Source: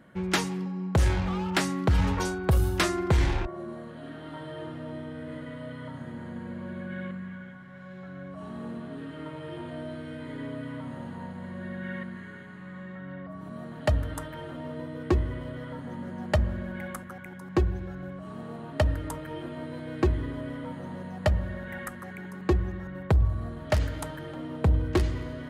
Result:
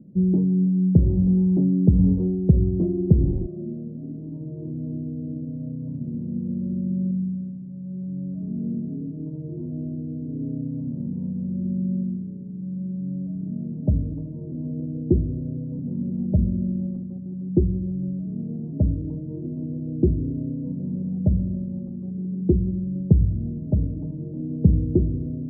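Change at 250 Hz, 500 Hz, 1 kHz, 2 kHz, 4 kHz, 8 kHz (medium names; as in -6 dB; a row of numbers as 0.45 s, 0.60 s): +10.0 dB, +0.5 dB, under -20 dB, under -40 dB, under -40 dB, under -35 dB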